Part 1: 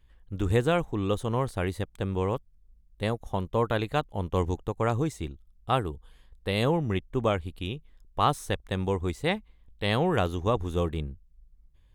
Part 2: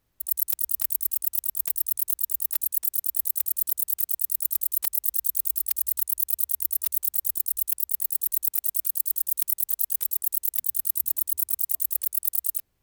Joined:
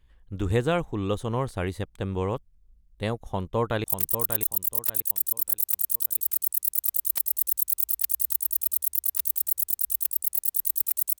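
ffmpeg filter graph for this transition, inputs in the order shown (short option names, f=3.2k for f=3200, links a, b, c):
-filter_complex "[0:a]apad=whole_dur=11.19,atrim=end=11.19,atrim=end=3.842[a];[1:a]atrim=start=1.508:end=8.86[b];[a][b]acrossfade=d=0.004:c1=hsin:c2=hsin,asplit=2[c][d];[d]afade=t=in:st=3.27:d=0.01,afade=t=out:st=3.84:d=0.01,aecho=0:1:590|1180|1770|2360:0.398107|0.119432|0.0358296|0.0107489[e];[c][e]amix=inputs=2:normalize=0"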